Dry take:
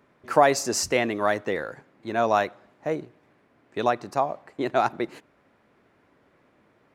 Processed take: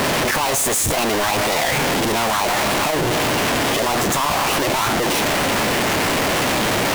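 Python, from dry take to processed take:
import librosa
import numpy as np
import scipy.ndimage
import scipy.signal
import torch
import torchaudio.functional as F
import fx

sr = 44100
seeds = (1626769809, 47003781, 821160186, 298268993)

y = np.sign(x) * np.sqrt(np.mean(np.square(x)))
y = fx.formant_shift(y, sr, semitones=5)
y = y * librosa.db_to_amplitude(8.5)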